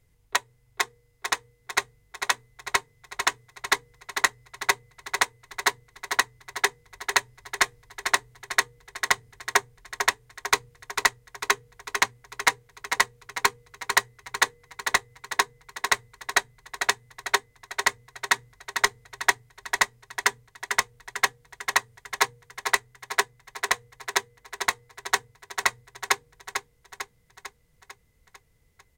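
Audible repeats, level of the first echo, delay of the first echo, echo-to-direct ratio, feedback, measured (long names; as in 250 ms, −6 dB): 6, −7.5 dB, 448 ms, −6.0 dB, 55%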